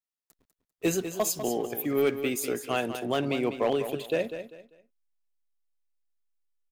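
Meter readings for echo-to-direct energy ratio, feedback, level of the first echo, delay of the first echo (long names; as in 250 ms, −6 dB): −9.5 dB, 28%, −10.0 dB, 197 ms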